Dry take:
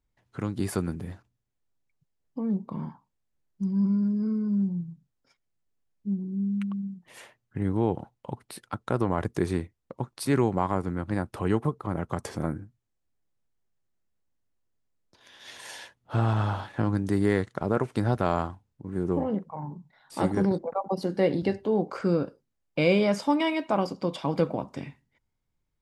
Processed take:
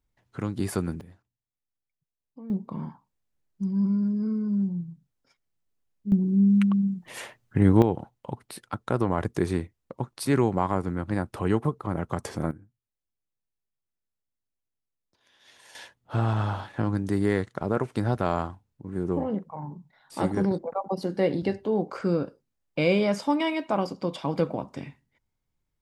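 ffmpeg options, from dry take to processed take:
ffmpeg -i in.wav -af "asetnsamples=nb_out_samples=441:pad=0,asendcmd='1.01 volume volume -12dB;2.5 volume volume 0dB;6.12 volume volume 9dB;7.82 volume volume 1dB;12.51 volume volume -10.5dB;15.75 volume volume -0.5dB',volume=0.5dB" out.wav

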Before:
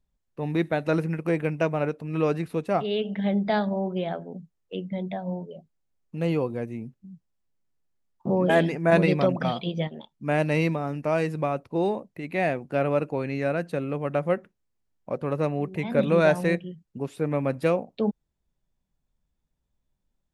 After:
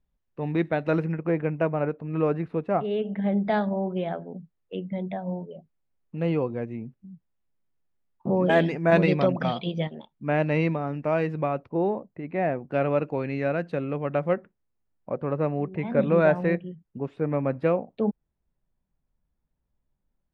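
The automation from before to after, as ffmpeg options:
ffmpeg -i in.wav -af "asetnsamples=nb_out_samples=441:pad=0,asendcmd='1.12 lowpass f 1800;3.32 lowpass f 2800;8.35 lowpass f 5000;9.95 lowpass f 2800;11.69 lowpass f 1500;12.71 lowpass f 3500;14.33 lowpass f 2000',lowpass=3100" out.wav

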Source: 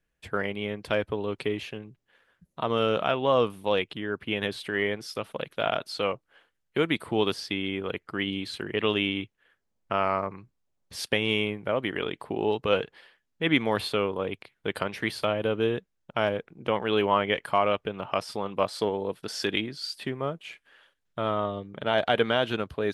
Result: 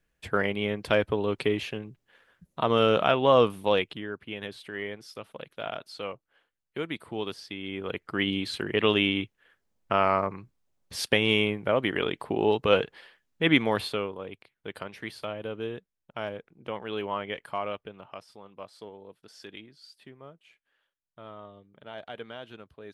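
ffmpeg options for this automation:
ffmpeg -i in.wav -af "volume=13.5dB,afade=type=out:start_time=3.59:duration=0.62:silence=0.281838,afade=type=in:start_time=7.58:duration=0.65:silence=0.298538,afade=type=out:start_time=13.47:duration=0.71:silence=0.281838,afade=type=out:start_time=17.69:duration=0.57:silence=0.375837" out.wav

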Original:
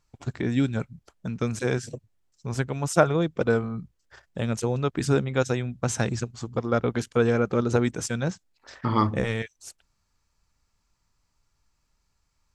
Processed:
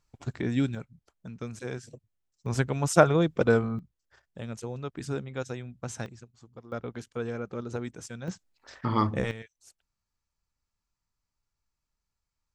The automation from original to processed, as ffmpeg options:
ffmpeg -i in.wav -af "asetnsamples=nb_out_samples=441:pad=0,asendcmd='0.75 volume volume -10.5dB;2.46 volume volume 0.5dB;3.79 volume volume -10.5dB;6.06 volume volume -19.5dB;6.72 volume volume -12dB;8.28 volume volume -3dB;9.31 volume volume -13dB',volume=-3dB" out.wav

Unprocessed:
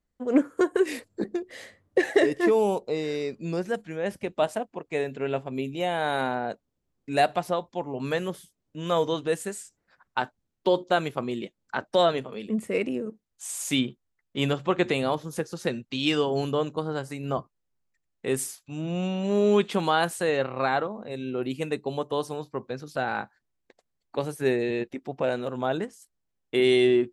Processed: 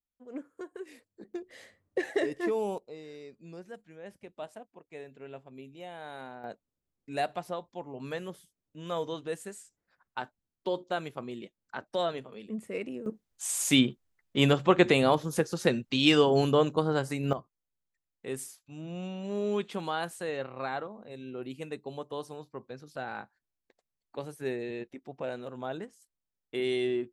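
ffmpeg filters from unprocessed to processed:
ffmpeg -i in.wav -af "asetnsamples=nb_out_samples=441:pad=0,asendcmd='1.34 volume volume -8.5dB;2.78 volume volume -16.5dB;6.44 volume volume -9dB;13.06 volume volume 2.5dB;17.33 volume volume -9.5dB',volume=-19.5dB" out.wav

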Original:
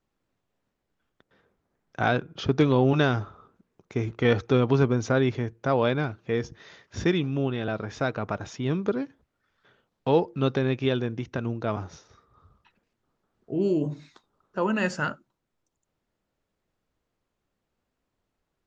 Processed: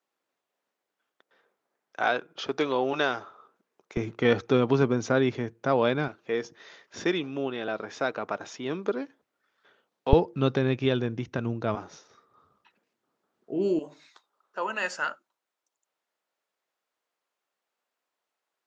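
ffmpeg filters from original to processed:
ffmpeg -i in.wav -af "asetnsamples=nb_out_samples=441:pad=0,asendcmd='3.97 highpass f 160;6.08 highpass f 320;10.13 highpass f 78;11.75 highpass f 250;13.79 highpass f 660',highpass=470" out.wav

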